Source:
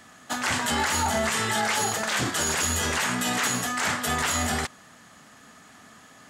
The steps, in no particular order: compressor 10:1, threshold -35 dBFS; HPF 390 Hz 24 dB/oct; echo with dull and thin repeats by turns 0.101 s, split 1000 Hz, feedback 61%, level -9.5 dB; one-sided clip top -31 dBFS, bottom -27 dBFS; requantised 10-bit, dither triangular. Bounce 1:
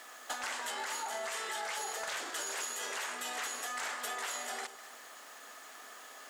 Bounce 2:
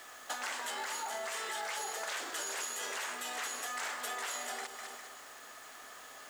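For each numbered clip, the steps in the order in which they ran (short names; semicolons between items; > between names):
requantised > compressor > HPF > one-sided clip > echo with dull and thin repeats by turns; echo with dull and thin repeats by turns > compressor > one-sided clip > HPF > requantised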